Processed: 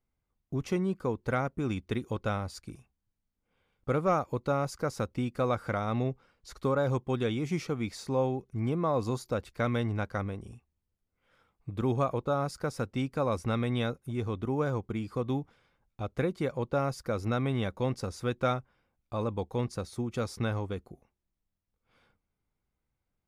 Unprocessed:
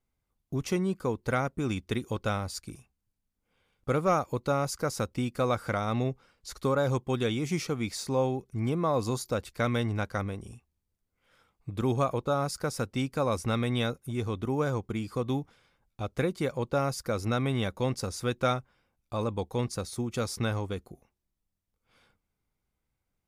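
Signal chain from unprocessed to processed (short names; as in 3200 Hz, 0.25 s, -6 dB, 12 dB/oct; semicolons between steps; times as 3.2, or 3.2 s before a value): high shelf 4000 Hz -9.5 dB; gain -1 dB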